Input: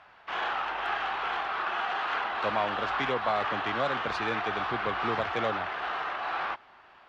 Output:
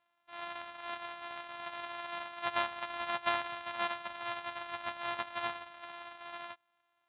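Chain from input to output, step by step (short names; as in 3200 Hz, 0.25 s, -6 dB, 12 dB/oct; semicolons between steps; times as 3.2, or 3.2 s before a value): sample sorter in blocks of 128 samples; steep low-pass 3800 Hz 72 dB/oct; resonant low shelf 550 Hz -14 dB, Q 1.5; upward expander 2.5:1, over -41 dBFS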